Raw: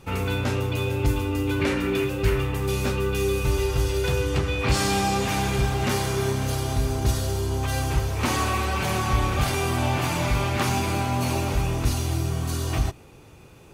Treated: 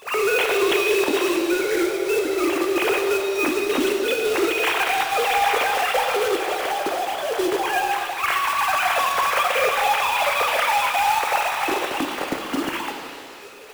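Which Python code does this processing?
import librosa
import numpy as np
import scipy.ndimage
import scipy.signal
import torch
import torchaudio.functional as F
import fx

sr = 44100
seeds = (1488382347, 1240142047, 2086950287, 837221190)

y = fx.sine_speech(x, sr)
y = fx.over_compress(y, sr, threshold_db=-25.0, ratio=-1.0)
y = fx.quant_companded(y, sr, bits=4)
y = fx.rev_shimmer(y, sr, seeds[0], rt60_s=2.1, semitones=7, shimmer_db=-8, drr_db=3.5)
y = F.gain(torch.from_numpy(y), 2.5).numpy()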